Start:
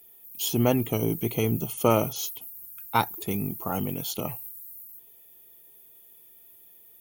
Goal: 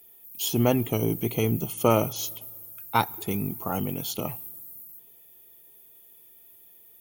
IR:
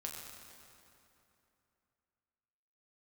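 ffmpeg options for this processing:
-filter_complex "[0:a]asplit=2[link_01][link_02];[1:a]atrim=start_sample=2205,asetrate=61740,aresample=44100,lowpass=8900[link_03];[link_02][link_03]afir=irnorm=-1:irlink=0,volume=-17.5dB[link_04];[link_01][link_04]amix=inputs=2:normalize=0"

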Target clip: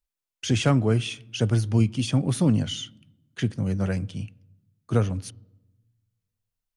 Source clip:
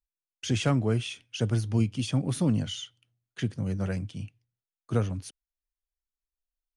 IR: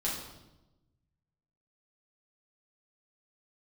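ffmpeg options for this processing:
-filter_complex "[0:a]asplit=2[link_01][link_02];[1:a]atrim=start_sample=2205,lowpass=2500[link_03];[link_02][link_03]afir=irnorm=-1:irlink=0,volume=-27dB[link_04];[link_01][link_04]amix=inputs=2:normalize=0,volume=4dB"

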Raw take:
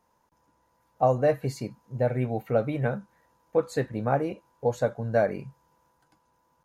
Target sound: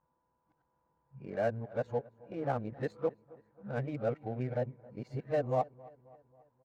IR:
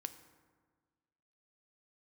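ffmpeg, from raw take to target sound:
-af "areverse,aecho=1:1:269|538|807|1076:0.0794|0.0429|0.0232|0.0125,adynamicsmooth=sensitivity=6:basefreq=1800,volume=-8.5dB"

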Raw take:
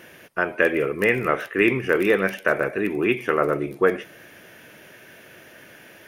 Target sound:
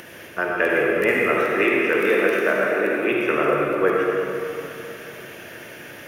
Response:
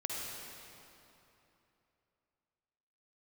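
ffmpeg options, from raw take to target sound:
-filter_complex "[0:a]asettb=1/sr,asplit=3[link_01][link_02][link_03];[link_01]atrim=end=1.134[link_04];[link_02]atrim=start=1.13:end=3.12,asetpts=PTS-STARTPTS,afade=type=in:duration=0.004:curve=qsin,afade=type=out:start_time=1.986:duration=0.004:curve=qsin,highpass=frequency=190:width=0.5412,highpass=frequency=190:width=1.3066[link_05];[link_03]atrim=start=3.116[link_06];[link_04][link_05]acrossfade=duration=0.004:curve1=hsin:curve2=qsin[link_07];[link_07][link_06]acrossfade=duration=0.004:curve1=qsin:curve2=hsin,acrossover=split=360[link_08][link_09];[link_08]alimiter=level_in=1.5dB:limit=-24dB:level=0:latency=1,volume=-1.5dB[link_10];[link_10][link_09]amix=inputs=2:normalize=0,acompressor=mode=upward:threshold=-34dB:ratio=2.5[link_11];[1:a]atrim=start_sample=2205[link_12];[link_11][link_12]afir=irnorm=-1:irlink=0"

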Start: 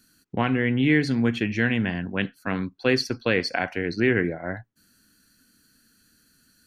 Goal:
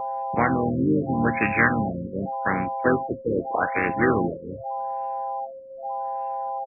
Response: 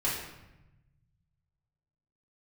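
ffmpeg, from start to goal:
-filter_complex "[0:a]bass=frequency=250:gain=-4,treble=frequency=4000:gain=12,aeval=exprs='val(0)+0.0355*sin(2*PI*800*n/s)':channel_layout=same,acrossover=split=1100[link_01][link_02];[link_02]acontrast=49[link_03];[link_01][link_03]amix=inputs=2:normalize=0,asplit=4[link_04][link_05][link_06][link_07];[link_05]asetrate=29433,aresample=44100,atempo=1.49831,volume=-9dB[link_08];[link_06]asetrate=37084,aresample=44100,atempo=1.18921,volume=-11dB[link_09];[link_07]asetrate=55563,aresample=44100,atempo=0.793701,volume=-9dB[link_10];[link_04][link_08][link_09][link_10]amix=inputs=4:normalize=0,afftfilt=real='re*lt(b*sr/1024,540*pow(2800/540,0.5+0.5*sin(2*PI*0.84*pts/sr)))':imag='im*lt(b*sr/1024,540*pow(2800/540,0.5+0.5*sin(2*PI*0.84*pts/sr)))':win_size=1024:overlap=0.75"

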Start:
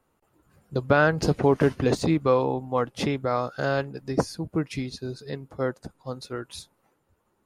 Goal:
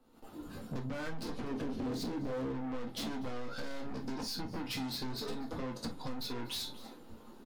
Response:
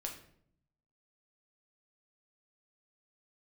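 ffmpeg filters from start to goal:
-filter_complex "[0:a]dynaudnorm=framelen=120:gausssize=3:maxgain=15dB,equalizer=frequency=125:width_type=o:width=1:gain=-6,equalizer=frequency=250:width_type=o:width=1:gain=11,equalizer=frequency=2000:width_type=o:width=1:gain=-5,equalizer=frequency=4000:width_type=o:width=1:gain=9,equalizer=frequency=8000:width_type=o:width=1:gain=-4,alimiter=limit=-13dB:level=0:latency=1:release=78,asoftclip=type=tanh:threshold=-31dB,asettb=1/sr,asplit=3[link_01][link_02][link_03];[link_01]atrim=end=1.514[link_04];[link_02]atrim=start=1.51:end=2.52,asetpts=PTS-STARTPTS,afade=type=in:duration=0.004:curve=qsin,afade=type=out:start_time=1.006:duration=0.004:curve=qsin,lowshelf=frequency=680:width_type=q:width=1.5:gain=7[link_05];[link_03]atrim=start=2.516[link_06];[link_04][link_05]acrossfade=duration=0.004:curve1=hsin:curve2=qsin[link_07];[link_07][link_06]acrossfade=duration=0.004:curve1=qsin:curve2=hsin,aecho=1:1:244:0.0891[link_08];[1:a]atrim=start_sample=2205,atrim=end_sample=4410,asetrate=66150,aresample=44100[link_09];[link_08][link_09]afir=irnorm=-1:irlink=0,asoftclip=type=hard:threshold=-29.5dB,flanger=delay=5.8:depth=3:regen=90:speed=0.35:shape=triangular,acompressor=threshold=-43dB:ratio=6,volume=8dB"

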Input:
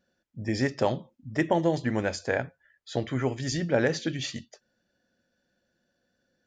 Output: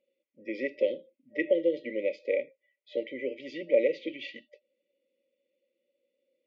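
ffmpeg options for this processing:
ffmpeg -i in.wav -af "afftfilt=real='re*(1-between(b*sr/4096,600,1900))':imag='im*(1-between(b*sr/4096,600,1900))':win_size=4096:overlap=0.75,highpass=frequency=390:width=0.5412,highpass=frequency=390:width=1.3066,equalizer=frequency=410:width_type=q:width=4:gain=-8,equalizer=frequency=780:width_type=q:width=4:gain=10,equalizer=frequency=1600:width_type=q:width=4:gain=-7,lowpass=frequency=2500:width=0.5412,lowpass=frequency=2500:width=1.3066,volume=4dB" out.wav

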